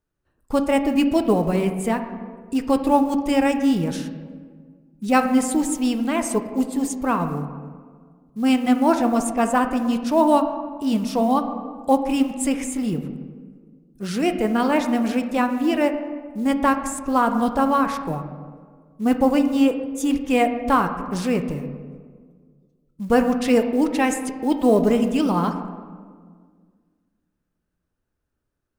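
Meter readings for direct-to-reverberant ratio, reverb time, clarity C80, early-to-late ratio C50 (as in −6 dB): 7.0 dB, 1.7 s, 10.0 dB, 9.0 dB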